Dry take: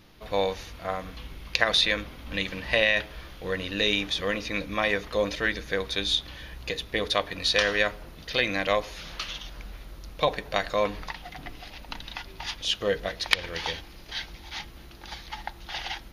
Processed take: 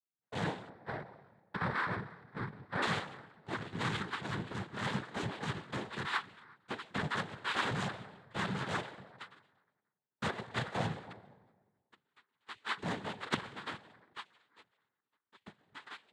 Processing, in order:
samples sorted by size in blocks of 32 samples
noise gate −32 dBFS, range −46 dB
flanger 1.4 Hz, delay 9.2 ms, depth 2.1 ms, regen +77%
linear-prediction vocoder at 8 kHz pitch kept
low-shelf EQ 280 Hz +11 dB
convolution reverb RT60 1.3 s, pre-delay 85 ms, DRR 16 dB
hard clipping −17.5 dBFS, distortion −16 dB
0:00.69–0:02.82: low-pass filter 1,800 Hz 24 dB per octave
cochlear-implant simulation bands 6
level −4.5 dB

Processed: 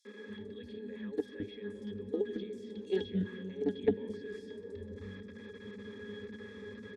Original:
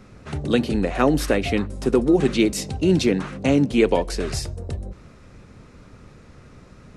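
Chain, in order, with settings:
high-pass filter 150 Hz 12 dB per octave
spectral tilt +2.5 dB per octave
notch filter 3,800 Hz, Q 21
in parallel at +1 dB: downward compressor 5 to 1, threshold −32 dBFS, peak gain reduction 15.5 dB
on the sum: brickwall limiter −16.5 dBFS, peak gain reduction 11.5 dB
output level in coarse steps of 23 dB
phaser with its sweep stopped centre 320 Hz, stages 4
resonances in every octave G#, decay 0.12 s
three-band delay without the direct sound highs, mids, lows 50/270 ms, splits 270/5,200 Hz
convolution reverb RT60 5.6 s, pre-delay 65 ms, DRR 12.5 dB
highs frequency-modulated by the lows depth 0.12 ms
level +16 dB

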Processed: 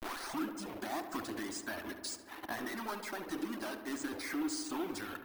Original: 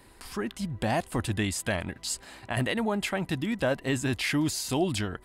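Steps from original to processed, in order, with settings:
turntable start at the beginning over 0.51 s
mains-hum notches 60/120/180/240/300/360 Hz
hard clipping −29.5 dBFS, distortion −8 dB
downward compressor 10 to 1, threshold −40 dBFS, peak gain reduction 9.5 dB
phaser with its sweep stopped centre 1,200 Hz, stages 4
bit reduction 8 bits
downward expander −45 dBFS
low shelf with overshoot 210 Hz −14 dB, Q 3
upward compression, threshold −48 dBFS
reverb reduction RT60 1.9 s
on a send: feedback echo with a low-pass in the loop 71 ms, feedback 80%, low-pass 2,900 Hz, level −10 dB
on the sum: bad sample-rate conversion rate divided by 3×, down filtered, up hold
level +8 dB

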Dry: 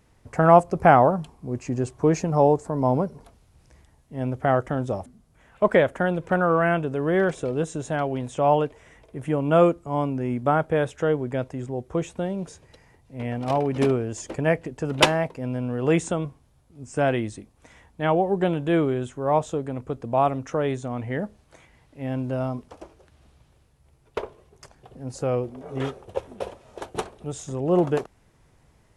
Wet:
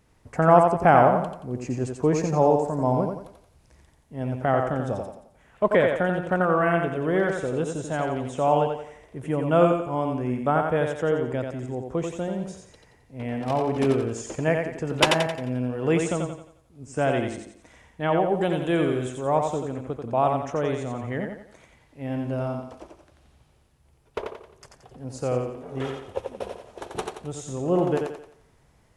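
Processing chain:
0:18.35–0:19.19: high-shelf EQ 4,200 Hz +8.5 dB
feedback echo with a high-pass in the loop 88 ms, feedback 42%, high-pass 190 Hz, level −4 dB
level −2 dB

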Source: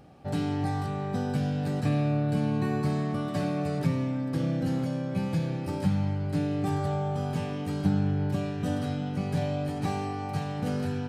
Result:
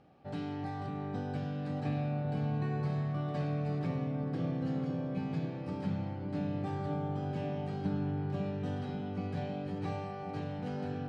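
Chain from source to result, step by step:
low-pass filter 4,100 Hz 12 dB per octave
low-shelf EQ 120 Hz −7.5 dB
on a send: delay with a low-pass on its return 546 ms, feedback 69%, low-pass 830 Hz, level −4 dB
on the sum: level −7.5 dB

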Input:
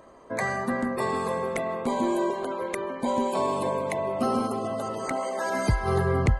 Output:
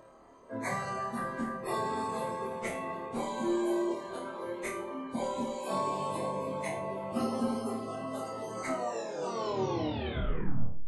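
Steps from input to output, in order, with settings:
turntable brake at the end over 1.30 s
time stretch by phase vocoder 1.7×
flutter between parallel walls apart 4.5 metres, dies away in 0.44 s
level −4.5 dB

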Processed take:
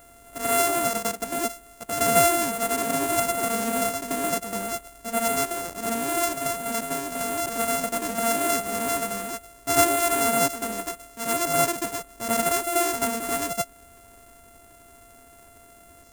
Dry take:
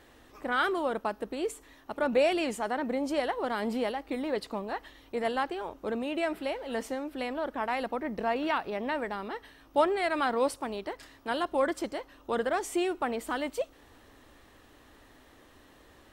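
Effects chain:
samples sorted by size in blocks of 64 samples
high shelf with overshoot 5,400 Hz +7 dB, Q 1.5
backwards echo 87 ms −5.5 dB
level +3 dB

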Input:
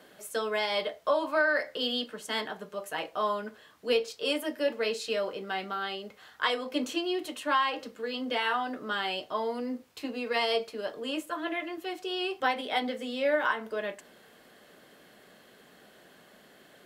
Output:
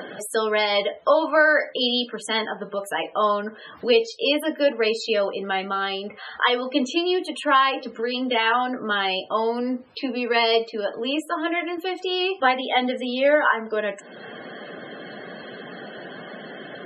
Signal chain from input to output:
upward compression, threshold −33 dBFS
spectral peaks only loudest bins 64
level +8.5 dB

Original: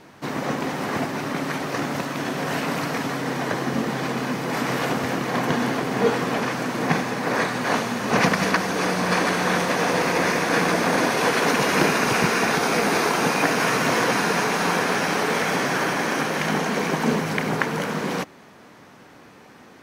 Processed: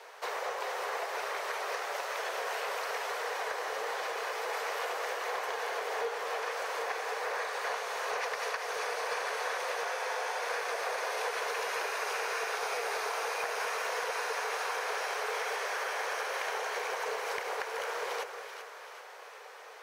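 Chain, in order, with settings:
elliptic high-pass filter 440 Hz, stop band 40 dB
downward compressor 5 to 1, threshold −33 dBFS, peak gain reduction 15.5 dB
soft clipping −21.5 dBFS, distortion −28 dB
on a send: echo with a time of its own for lows and highs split 1,000 Hz, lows 216 ms, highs 384 ms, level −8.5 dB
on the sum: frozen spectrum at 0:09.87, 0.54 s

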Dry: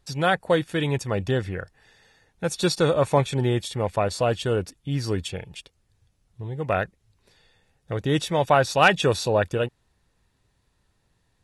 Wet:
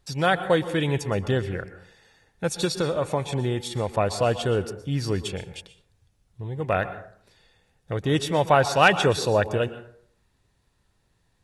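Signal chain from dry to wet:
0:02.64–0:03.89: downward compressor, threshold −21 dBFS, peak gain reduction 8 dB
dense smooth reverb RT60 0.58 s, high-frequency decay 0.5×, pre-delay 105 ms, DRR 12.5 dB

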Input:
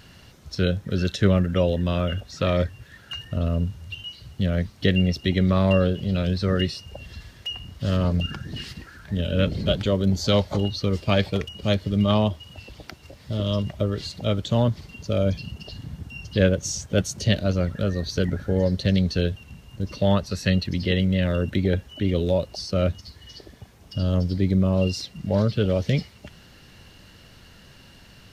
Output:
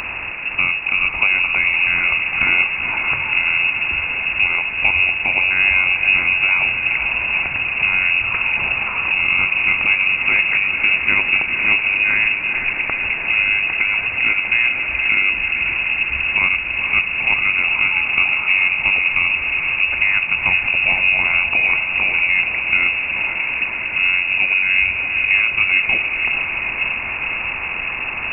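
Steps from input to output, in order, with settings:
compressor on every frequency bin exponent 0.6
downward compressor 2 to 1, threshold −28 dBFS, peak gain reduction 9.5 dB
feedback delay with all-pass diffusion 476 ms, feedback 75%, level −6.5 dB
voice inversion scrambler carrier 2,700 Hz
level +8 dB

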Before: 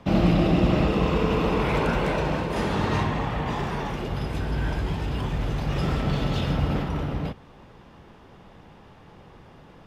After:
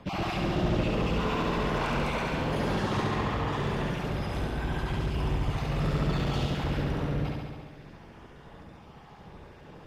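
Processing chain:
time-frequency cells dropped at random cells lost 24%
soft clipping −26 dBFS, distortion −8 dB
on a send: flutter between parallel walls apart 11.9 metres, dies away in 1.5 s
on the sum: level −1.5 dB

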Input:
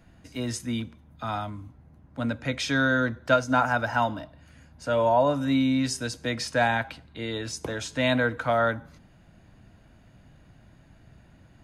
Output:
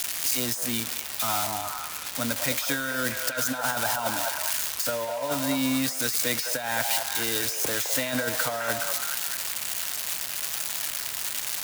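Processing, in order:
spike at every zero crossing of −17 dBFS
low-shelf EQ 250 Hz −9.5 dB
compressor whose output falls as the input rises −26 dBFS, ratio −0.5
echo through a band-pass that steps 210 ms, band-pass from 760 Hz, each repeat 0.7 octaves, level −2 dB

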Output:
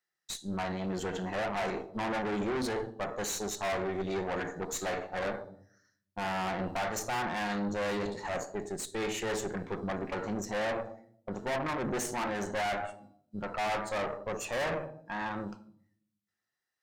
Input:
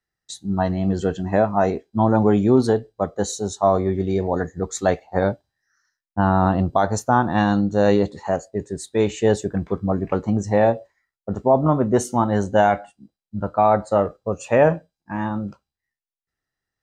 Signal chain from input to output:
high-pass filter 640 Hz 6 dB per octave
rectangular room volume 1,000 cubic metres, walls furnished, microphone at 0.95 metres
tube saturation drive 29 dB, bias 0.8
dynamic equaliser 1,900 Hz, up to +5 dB, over −49 dBFS, Q 1.7
brickwall limiter −29 dBFS, peak gain reduction 6 dB
level +3 dB

